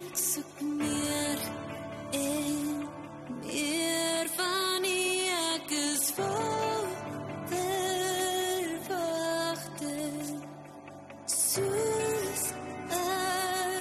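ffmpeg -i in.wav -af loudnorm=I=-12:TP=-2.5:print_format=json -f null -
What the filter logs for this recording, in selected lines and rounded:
"input_i" : "-30.7",
"input_tp" : "-15.6",
"input_lra" : "3.1",
"input_thresh" : "-40.9",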